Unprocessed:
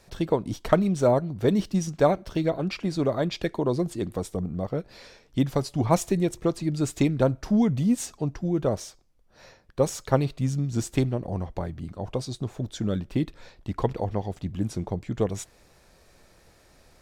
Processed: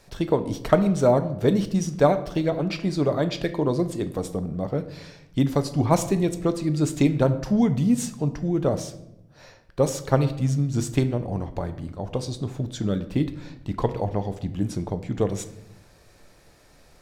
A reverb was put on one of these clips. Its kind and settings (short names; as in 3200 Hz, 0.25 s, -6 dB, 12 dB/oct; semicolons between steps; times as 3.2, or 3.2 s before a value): shoebox room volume 250 m³, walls mixed, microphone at 0.35 m; gain +1.5 dB